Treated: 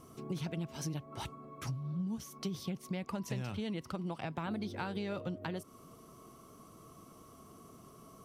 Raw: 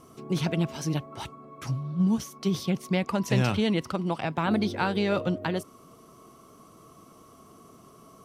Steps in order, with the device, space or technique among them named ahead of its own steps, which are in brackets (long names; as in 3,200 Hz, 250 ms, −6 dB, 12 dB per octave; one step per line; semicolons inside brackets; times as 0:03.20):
ASMR close-microphone chain (low-shelf EQ 160 Hz +5.5 dB; downward compressor 6 to 1, threshold −31 dBFS, peak gain reduction 14 dB; high-shelf EQ 9,800 Hz +5 dB)
level −4.5 dB